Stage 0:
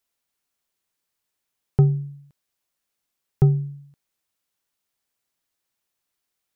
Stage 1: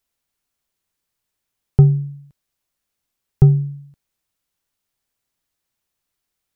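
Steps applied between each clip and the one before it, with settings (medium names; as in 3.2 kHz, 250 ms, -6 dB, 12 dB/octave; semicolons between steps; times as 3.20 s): bass shelf 140 Hz +9.5 dB; trim +1 dB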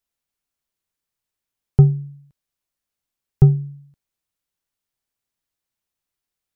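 upward expansion 1.5:1, over -18 dBFS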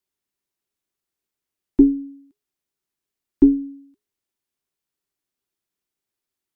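frequency shift -420 Hz; trim -1.5 dB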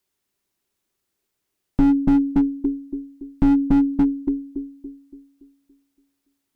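feedback echo behind a low-pass 284 ms, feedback 45%, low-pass 720 Hz, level -4 dB; slew-rate limiter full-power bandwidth 25 Hz; trim +7.5 dB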